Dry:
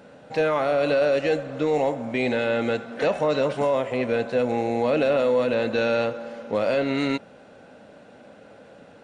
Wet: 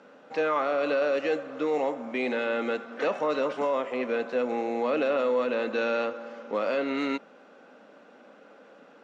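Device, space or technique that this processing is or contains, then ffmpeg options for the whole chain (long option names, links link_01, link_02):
television speaker: -af "highpass=frequency=220:width=0.5412,highpass=frequency=220:width=1.3066,equalizer=frequency=650:width_type=q:width=4:gain=-3,equalizer=frequency=1200:width_type=q:width=4:gain=7,equalizer=frequency=4100:width_type=q:width=4:gain=-4,lowpass=frequency=6700:width=0.5412,lowpass=frequency=6700:width=1.3066,volume=-4dB"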